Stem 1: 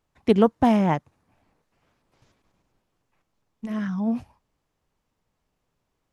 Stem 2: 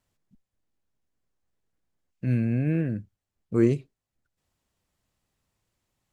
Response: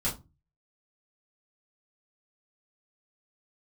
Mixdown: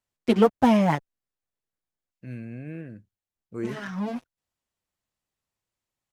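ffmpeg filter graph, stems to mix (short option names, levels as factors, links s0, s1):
-filter_complex "[0:a]acontrast=35,aeval=exprs='sgn(val(0))*max(abs(val(0))-0.0237,0)':c=same,asplit=2[s0][s1];[s1]adelay=6,afreqshift=-2.8[s2];[s0][s2]amix=inputs=2:normalize=1,volume=1.12[s3];[1:a]volume=0.422[s4];[s3][s4]amix=inputs=2:normalize=0,lowshelf=f=340:g=-7"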